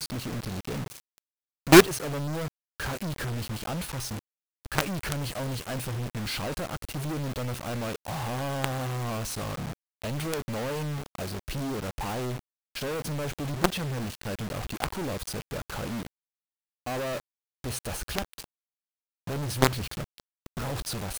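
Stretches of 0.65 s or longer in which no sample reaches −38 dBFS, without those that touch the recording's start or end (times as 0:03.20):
0:16.07–0:16.86
0:18.44–0:19.27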